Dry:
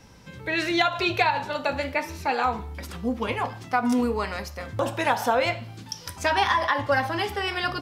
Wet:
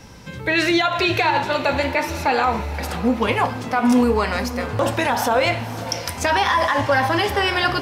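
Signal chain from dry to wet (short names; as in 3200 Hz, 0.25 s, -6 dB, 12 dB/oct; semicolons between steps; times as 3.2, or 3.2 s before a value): limiter -17.5 dBFS, peak gain reduction 11 dB; on a send: diffused feedback echo 0.542 s, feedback 57%, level -13.5 dB; on the sum: gain +8.5 dB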